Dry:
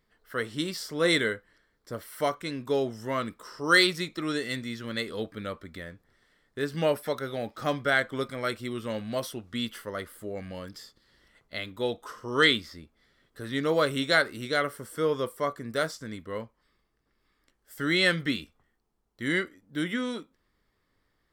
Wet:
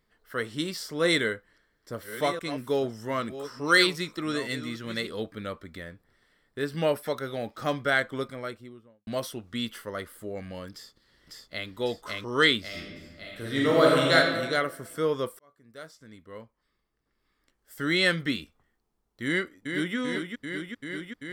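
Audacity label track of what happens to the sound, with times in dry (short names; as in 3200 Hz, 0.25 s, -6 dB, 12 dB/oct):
1.010000	5.070000	reverse delay 0.692 s, level -11.5 dB
5.880000	6.960000	notch 6500 Hz, Q 6.2
8.010000	9.070000	studio fade out
10.720000	11.690000	echo throw 0.55 s, feedback 55%, level -0.5 dB
12.670000	14.150000	reverb throw, RT60 1.4 s, DRR -3.5 dB
15.390000	17.870000	fade in linear
19.260000	19.960000	echo throw 0.39 s, feedback 85%, level -6 dB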